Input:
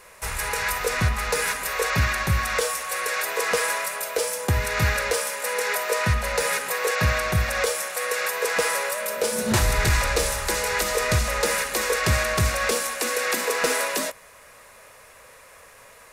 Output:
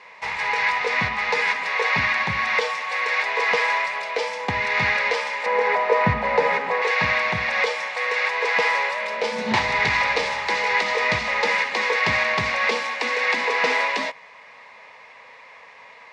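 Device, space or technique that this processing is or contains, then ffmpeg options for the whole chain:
kitchen radio: -filter_complex "[0:a]asettb=1/sr,asplit=3[link_01][link_02][link_03];[link_01]atrim=end=5.464[link_04];[link_02]atrim=start=5.46:end=6.82,asetpts=PTS-STARTPTS,afade=type=in:duration=0.004:curve=qsin,afade=type=out:start_time=1.356:duration=0.004:curve=qsin,tiltshelf=frequency=1400:gain=9.5[link_05];[link_03]atrim=start=6.816[link_06];[link_04][link_05]acrossfade=duration=0.004:curve1=hsin:curve2=qsin[link_07];[link_07][link_06]acrossfade=duration=0.004:curve1=qsin:curve2=hsin,highpass=220,equalizer=frequency=350:width_type=q:width=4:gain=-9,equalizer=frequency=570:width_type=q:width=4:gain=-5,equalizer=frequency=910:width_type=q:width=4:gain=8,equalizer=frequency=1400:width_type=q:width=4:gain=-8,equalizer=frequency=2100:width_type=q:width=4:gain=8,lowpass=frequency=4500:width=0.5412,lowpass=frequency=4500:width=1.3066,volume=2.5dB"

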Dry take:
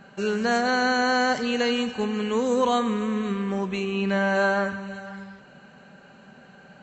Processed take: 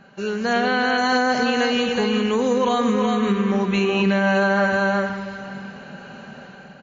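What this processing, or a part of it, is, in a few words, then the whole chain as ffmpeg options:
low-bitrate web radio: -filter_complex "[0:a]asettb=1/sr,asplit=3[link_01][link_02][link_03];[link_01]atrim=end=0.534[link_04];[link_02]atrim=start=0.53:end=0.98,asetpts=PTS-STARTPTS,afade=type=in:duration=0.004:curve=qsin,afade=type=out:start_time=0.446:duration=0.004:curve=qsin,highshelf=frequency=4400:width_type=q:width=3:gain=-9[link_05];[link_03]atrim=start=0.976[link_06];[link_04][link_05]acrossfade=duration=0.004:curve1=hsin:curve2=qsin[link_07];[link_07][link_06]acrossfade=duration=0.004:curve1=qsin:curve2=hsin,aecho=1:1:373:0.501,dynaudnorm=framelen=160:gausssize=9:maxgain=10.5dB,alimiter=limit=-10.5dB:level=0:latency=1:release=144" -ar 16000 -c:a libmp3lame -b:a 40k

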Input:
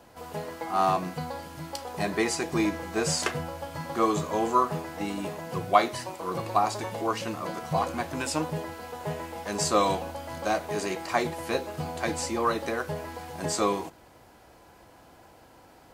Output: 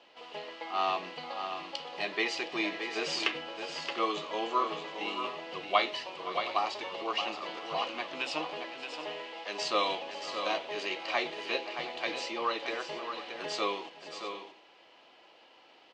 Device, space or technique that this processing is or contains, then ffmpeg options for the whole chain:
phone earpiece: -filter_complex "[0:a]highshelf=frequency=5100:gain=4.5,asettb=1/sr,asplit=3[link_01][link_02][link_03];[link_01]atrim=end=8.504[link_04];[link_02]atrim=start=8.5:end=9.65,asetpts=PTS-STARTPTS,afade=type=in:duration=0.004:curve=qsin,afade=type=out:start_time=1.146:duration=0.004:curve=qsin,highpass=210[link_05];[link_03]atrim=start=9.646[link_06];[link_04][link_05]acrossfade=duration=0.004:curve1=hsin:curve2=qsin[link_07];[link_07][link_06]acrossfade=duration=0.004:curve1=qsin:curve2=hsin,highpass=460,equalizer=frequency=490:width_type=q:width=4:gain=-3,equalizer=frequency=720:width_type=q:width=4:gain=-6,equalizer=frequency=1000:width_type=q:width=4:gain=-5,equalizer=frequency=1500:width_type=q:width=4:gain=-9,equalizer=frequency=2900:width_type=q:width=4:gain=8,lowpass=frequency=4300:width=0.5412,lowpass=frequency=4300:width=1.3066,lowshelf=frequency=350:gain=-4.5,aecho=1:1:517|623|718:0.133|0.398|0.141"

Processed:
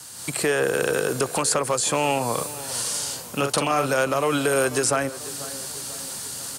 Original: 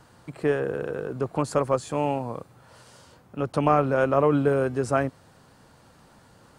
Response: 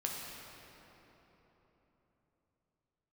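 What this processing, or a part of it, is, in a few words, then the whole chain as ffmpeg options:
FM broadcast chain: -filter_complex "[0:a]highpass=67,lowpass=9300,equalizer=frequency=4200:width_type=o:width=2.6:gain=4.5,dynaudnorm=framelen=140:gausssize=3:maxgain=8dB,acrossover=split=370|1500|3000[link_01][link_02][link_03][link_04];[link_01]acompressor=threshold=-30dB:ratio=4[link_05];[link_02]acompressor=threshold=-20dB:ratio=4[link_06];[link_03]acompressor=threshold=-33dB:ratio=4[link_07];[link_04]acompressor=threshold=-48dB:ratio=4[link_08];[link_05][link_06][link_07][link_08]amix=inputs=4:normalize=0,aemphasis=mode=production:type=75fm,alimiter=limit=-14dB:level=0:latency=1:release=129,asoftclip=type=hard:threshold=-15.5dB,lowpass=frequency=15000:width=0.5412,lowpass=frequency=15000:width=1.3066,aemphasis=mode=production:type=75fm,asettb=1/sr,asplit=3[link_09][link_10][link_11];[link_09]atrim=end=2.344[link_12];[link_10]atrim=start=2.34:end=3.87,asetpts=PTS-STARTPTS,afade=type=in:duration=0.004:curve=qsin,afade=type=out:start_time=1.526:duration=0.004:curve=qsin,asplit=2[link_13][link_14];[link_14]adelay=43,volume=-6dB[link_15];[link_13][link_15]amix=inputs=2:normalize=0,atrim=end_sample=67473[link_16];[link_11]atrim=start=3.866[link_17];[link_12][link_16]acrossfade=duration=0.004:curve1=hsin:curve2=qsin[link_18];[link_18][link_17]acrossfade=duration=0.004:curve1=qsin:curve2=hsin,asplit=2[link_19][link_20];[link_20]adelay=492,lowpass=frequency=2000:poles=1,volume=-16dB,asplit=2[link_21][link_22];[link_22]adelay=492,lowpass=frequency=2000:poles=1,volume=0.54,asplit=2[link_23][link_24];[link_24]adelay=492,lowpass=frequency=2000:poles=1,volume=0.54,asplit=2[link_25][link_26];[link_26]adelay=492,lowpass=frequency=2000:poles=1,volume=0.54,asplit=2[link_27][link_28];[link_28]adelay=492,lowpass=frequency=2000:poles=1,volume=0.54[link_29];[link_19][link_21][link_23][link_25][link_27][link_29]amix=inputs=6:normalize=0,volume=2dB"

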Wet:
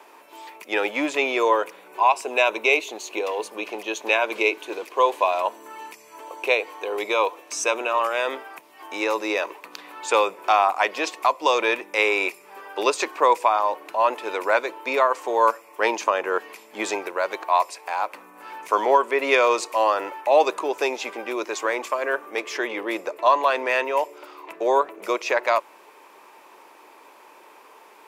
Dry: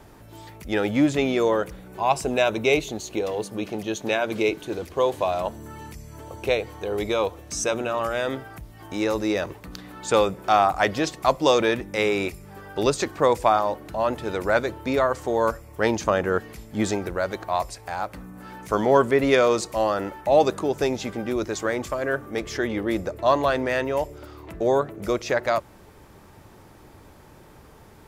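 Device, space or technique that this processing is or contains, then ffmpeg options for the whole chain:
laptop speaker: -af "highpass=frequency=360:width=0.5412,highpass=frequency=360:width=1.3066,equalizer=frequency=1000:width_type=o:width=0.35:gain=10.5,equalizer=frequency=2500:width_type=o:width=0.47:gain=9.5,alimiter=limit=-6.5dB:level=0:latency=1:release=335"

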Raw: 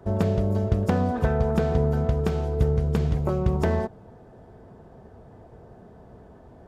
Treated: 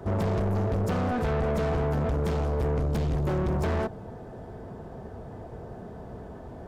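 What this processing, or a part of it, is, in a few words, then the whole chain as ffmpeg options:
saturation between pre-emphasis and de-emphasis: -af "highshelf=frequency=2100:gain=9,asoftclip=type=tanh:threshold=-31dB,highshelf=frequency=2100:gain=-9,volume=7dB"

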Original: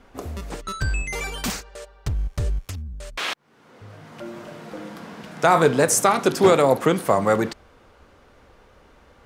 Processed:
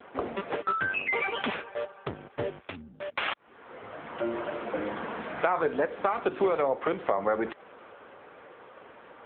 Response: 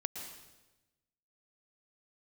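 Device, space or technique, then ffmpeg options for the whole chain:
voicemail: -af "highpass=330,lowpass=3000,acompressor=threshold=-31dB:ratio=8,volume=8.5dB" -ar 8000 -c:a libopencore_amrnb -b:a 6700

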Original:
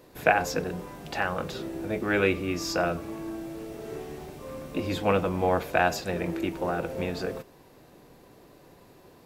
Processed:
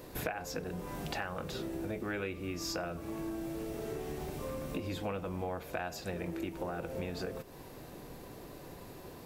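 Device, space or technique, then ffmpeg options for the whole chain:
ASMR close-microphone chain: -af "lowshelf=frequency=100:gain=6,acompressor=threshold=-40dB:ratio=6,highshelf=frequency=8900:gain=5,volume=4dB"

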